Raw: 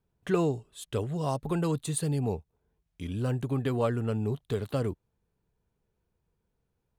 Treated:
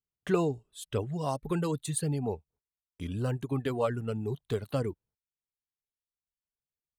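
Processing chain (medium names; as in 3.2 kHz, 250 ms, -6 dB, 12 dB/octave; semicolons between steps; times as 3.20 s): gate -59 dBFS, range -22 dB; reverb removal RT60 1.3 s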